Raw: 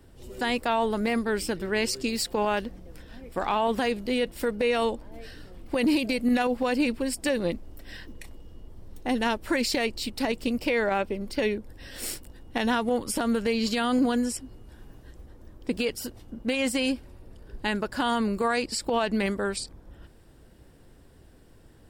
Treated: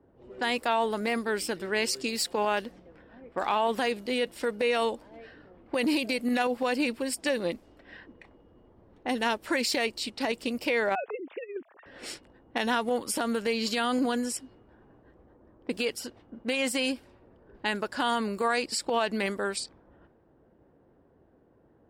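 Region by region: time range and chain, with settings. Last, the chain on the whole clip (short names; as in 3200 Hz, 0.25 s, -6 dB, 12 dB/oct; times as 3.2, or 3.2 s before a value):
10.95–11.86 sine-wave speech + negative-ratio compressor -31 dBFS, ratio -0.5
whole clip: low-pass opened by the level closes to 760 Hz, open at -26 dBFS; HPF 350 Hz 6 dB/oct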